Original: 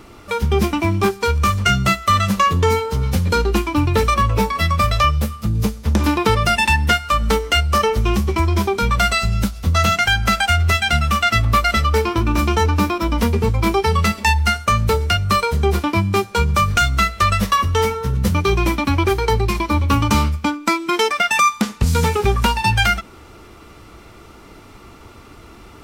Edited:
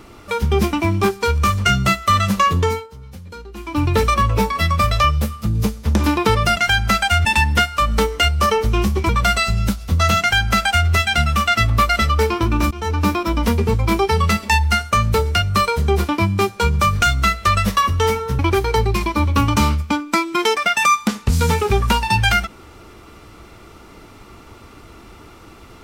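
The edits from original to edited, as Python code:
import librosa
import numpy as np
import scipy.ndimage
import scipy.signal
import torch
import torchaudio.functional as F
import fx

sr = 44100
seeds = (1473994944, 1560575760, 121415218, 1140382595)

y = fx.edit(x, sr, fx.fade_down_up(start_s=2.58, length_s=1.28, db=-18.5, fade_s=0.3),
    fx.cut(start_s=8.41, length_s=0.43),
    fx.duplicate(start_s=9.95, length_s=0.68, to_s=6.57),
    fx.fade_in_from(start_s=12.46, length_s=0.35, floor_db=-22.5),
    fx.cut(start_s=18.14, length_s=0.79), tone=tone)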